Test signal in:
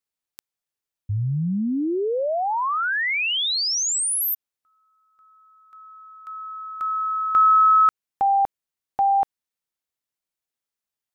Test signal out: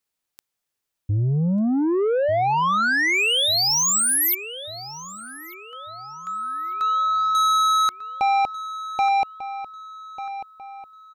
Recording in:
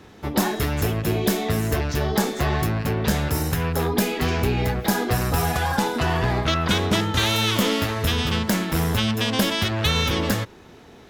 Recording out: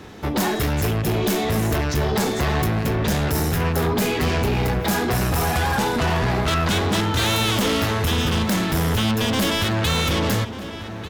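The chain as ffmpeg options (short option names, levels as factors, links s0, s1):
-filter_complex "[0:a]asoftclip=type=tanh:threshold=0.0631,asplit=2[s0][s1];[s1]adelay=1194,lowpass=f=3100:p=1,volume=0.251,asplit=2[s2][s3];[s3]adelay=1194,lowpass=f=3100:p=1,volume=0.45,asplit=2[s4][s5];[s5]adelay=1194,lowpass=f=3100:p=1,volume=0.45,asplit=2[s6][s7];[s7]adelay=1194,lowpass=f=3100:p=1,volume=0.45,asplit=2[s8][s9];[s9]adelay=1194,lowpass=f=3100:p=1,volume=0.45[s10];[s2][s4][s6][s8][s10]amix=inputs=5:normalize=0[s11];[s0][s11]amix=inputs=2:normalize=0,volume=2.11"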